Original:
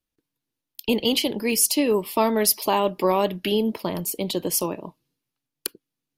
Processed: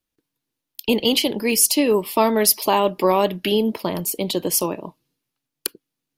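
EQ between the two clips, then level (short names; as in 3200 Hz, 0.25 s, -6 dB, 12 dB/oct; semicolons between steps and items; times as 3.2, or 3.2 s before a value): low shelf 140 Hz -3.5 dB; +3.5 dB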